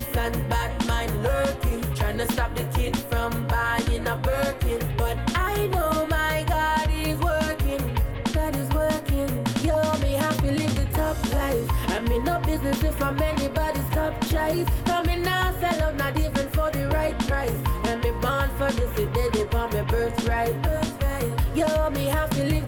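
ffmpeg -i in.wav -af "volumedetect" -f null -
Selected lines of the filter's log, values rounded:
mean_volume: -23.8 dB
max_volume: -13.2 dB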